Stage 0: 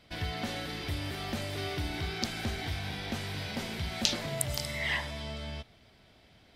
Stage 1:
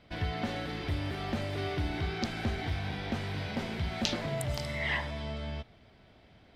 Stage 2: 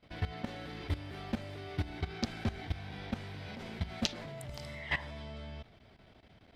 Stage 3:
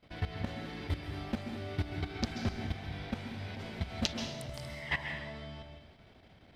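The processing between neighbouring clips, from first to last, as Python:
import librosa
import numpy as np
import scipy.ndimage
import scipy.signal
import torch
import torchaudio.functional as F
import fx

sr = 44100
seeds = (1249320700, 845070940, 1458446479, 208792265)

y1 = fx.lowpass(x, sr, hz=2000.0, slope=6)
y1 = y1 * librosa.db_to_amplitude(2.5)
y2 = fx.level_steps(y1, sr, step_db=15)
y2 = y2 * librosa.db_to_amplitude(1.0)
y3 = fx.rev_plate(y2, sr, seeds[0], rt60_s=0.9, hf_ratio=1.0, predelay_ms=120, drr_db=5.0)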